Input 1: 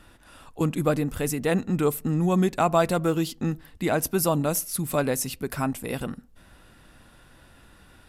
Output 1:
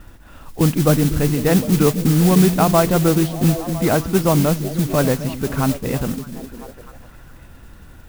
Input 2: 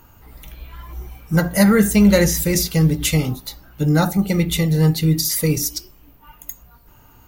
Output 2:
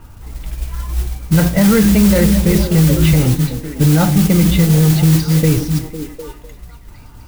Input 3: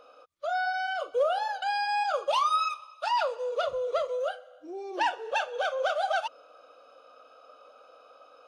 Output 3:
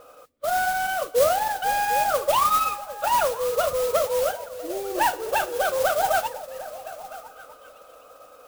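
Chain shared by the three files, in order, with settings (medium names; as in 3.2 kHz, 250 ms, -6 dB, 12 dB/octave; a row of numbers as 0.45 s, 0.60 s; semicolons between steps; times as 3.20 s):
distance through air 320 m; repeats whose band climbs or falls 251 ms, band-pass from 190 Hz, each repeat 0.7 oct, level -7 dB; modulation noise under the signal 11 dB; bass shelf 140 Hz +8.5 dB; peak limiter -9.5 dBFS; trim +6.5 dB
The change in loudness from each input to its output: +8.5 LU, +4.5 LU, +6.0 LU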